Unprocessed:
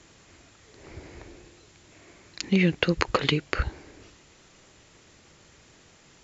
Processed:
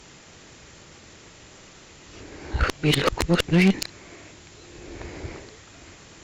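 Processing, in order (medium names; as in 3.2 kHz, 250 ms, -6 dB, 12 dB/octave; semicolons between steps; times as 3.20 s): reverse the whole clip; sine folder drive 10 dB, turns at -3 dBFS; Chebyshev shaper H 5 -24 dB, 6 -23 dB, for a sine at -2.5 dBFS; trim -8.5 dB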